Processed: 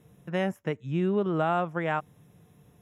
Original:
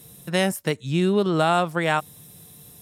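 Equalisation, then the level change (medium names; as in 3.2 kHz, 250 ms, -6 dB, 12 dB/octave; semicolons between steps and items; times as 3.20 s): boxcar filter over 10 samples; -5.5 dB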